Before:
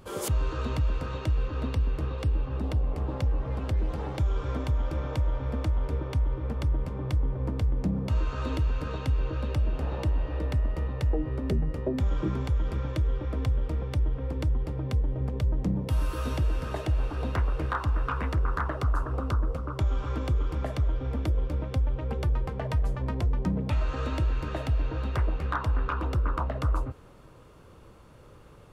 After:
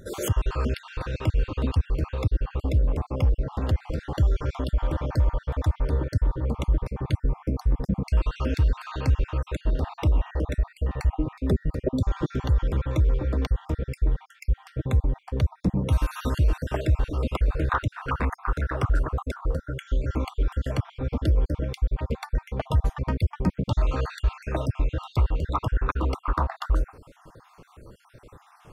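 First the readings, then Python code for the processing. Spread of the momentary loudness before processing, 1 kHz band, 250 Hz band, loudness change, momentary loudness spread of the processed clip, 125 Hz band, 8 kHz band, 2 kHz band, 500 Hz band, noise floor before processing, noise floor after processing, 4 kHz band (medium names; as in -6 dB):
2 LU, +2.5 dB, +3.0 dB, +2.5 dB, 5 LU, +2.5 dB, no reading, +2.5 dB, +3.0 dB, -51 dBFS, -58 dBFS, +2.5 dB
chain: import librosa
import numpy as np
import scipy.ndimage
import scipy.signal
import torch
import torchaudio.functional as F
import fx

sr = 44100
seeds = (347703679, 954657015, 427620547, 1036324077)

y = fx.spec_dropout(x, sr, seeds[0], share_pct=47)
y = y * librosa.db_to_amplitude(5.5)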